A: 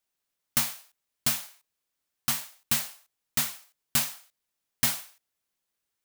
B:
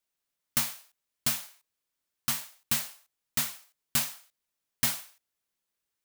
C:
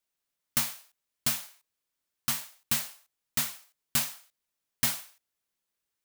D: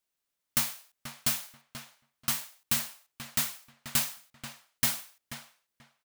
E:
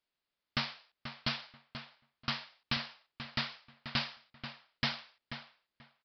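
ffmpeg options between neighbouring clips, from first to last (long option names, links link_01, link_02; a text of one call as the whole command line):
ffmpeg -i in.wav -af "bandreject=frequency=770:width=21,volume=-2dB" out.wav
ffmpeg -i in.wav -af anull out.wav
ffmpeg -i in.wav -filter_complex "[0:a]asplit=2[link_01][link_02];[link_02]adelay=485,lowpass=frequency=3000:poles=1,volume=-9dB,asplit=2[link_03][link_04];[link_04]adelay=485,lowpass=frequency=3000:poles=1,volume=0.19,asplit=2[link_05][link_06];[link_06]adelay=485,lowpass=frequency=3000:poles=1,volume=0.19[link_07];[link_01][link_03][link_05][link_07]amix=inputs=4:normalize=0" out.wav
ffmpeg -i in.wav -af "aresample=11025,aresample=44100" out.wav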